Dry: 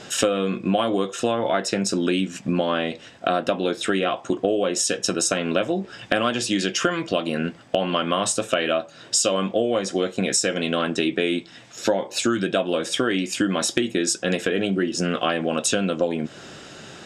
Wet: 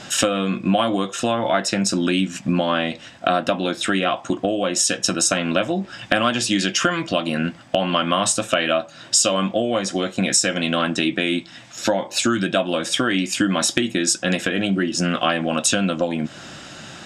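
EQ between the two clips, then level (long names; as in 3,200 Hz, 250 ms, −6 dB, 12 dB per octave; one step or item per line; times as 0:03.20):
parametric band 430 Hz −13 dB 0.36 octaves
+4.0 dB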